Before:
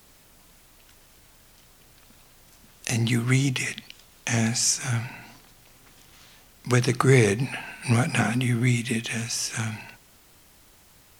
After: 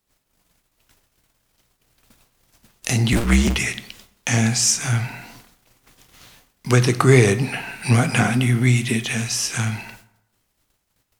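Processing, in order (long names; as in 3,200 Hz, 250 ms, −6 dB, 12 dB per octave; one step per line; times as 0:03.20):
0:03.12–0:03.56: sub-harmonics by changed cycles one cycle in 2, inverted
noise gate −51 dBFS, range −26 dB
in parallel at −10.5 dB: soft clipping −20 dBFS, distortion −10 dB
on the sum: dense smooth reverb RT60 0.82 s, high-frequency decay 0.6×, DRR 12 dB
level +3 dB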